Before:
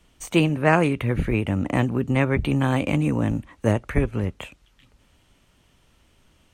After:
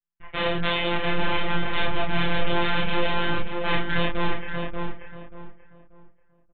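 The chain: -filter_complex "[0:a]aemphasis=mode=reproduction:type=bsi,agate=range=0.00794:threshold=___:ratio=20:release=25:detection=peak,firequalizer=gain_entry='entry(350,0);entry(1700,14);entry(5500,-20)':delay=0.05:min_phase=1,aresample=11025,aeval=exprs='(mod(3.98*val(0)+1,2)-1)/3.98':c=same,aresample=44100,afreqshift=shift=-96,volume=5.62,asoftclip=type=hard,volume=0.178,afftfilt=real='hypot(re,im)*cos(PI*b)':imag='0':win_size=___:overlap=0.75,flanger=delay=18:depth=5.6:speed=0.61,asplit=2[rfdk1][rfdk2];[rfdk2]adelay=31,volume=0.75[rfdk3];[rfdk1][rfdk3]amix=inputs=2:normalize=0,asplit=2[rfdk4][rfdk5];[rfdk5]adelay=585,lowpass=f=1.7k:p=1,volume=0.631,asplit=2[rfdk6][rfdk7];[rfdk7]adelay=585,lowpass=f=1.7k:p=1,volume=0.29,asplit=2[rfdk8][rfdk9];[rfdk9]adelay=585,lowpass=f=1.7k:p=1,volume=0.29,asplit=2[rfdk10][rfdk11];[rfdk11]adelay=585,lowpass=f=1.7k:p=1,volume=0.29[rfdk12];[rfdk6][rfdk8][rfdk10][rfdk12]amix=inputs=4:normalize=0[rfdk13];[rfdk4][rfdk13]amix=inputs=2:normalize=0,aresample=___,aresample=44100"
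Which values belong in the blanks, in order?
0.0126, 1024, 8000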